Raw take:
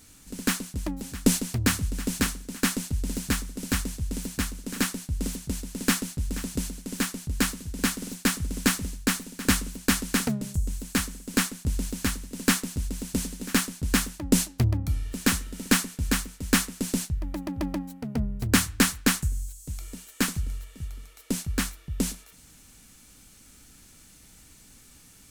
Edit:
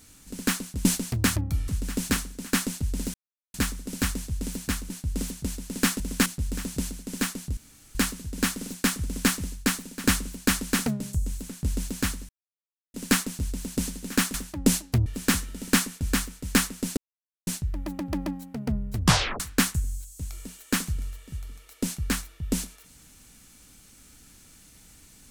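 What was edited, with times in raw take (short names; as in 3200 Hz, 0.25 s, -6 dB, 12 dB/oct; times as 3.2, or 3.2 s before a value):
0.85–1.27 cut
3.24 insert silence 0.40 s
4.6–4.95 cut
7.36 insert room tone 0.38 s
8.46–8.72 copy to 6.05
10.9–11.51 cut
12.31 insert silence 0.65 s
13.71–14 cut
14.72–15.04 move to 1.78
16.95 insert silence 0.50 s
18.42 tape stop 0.46 s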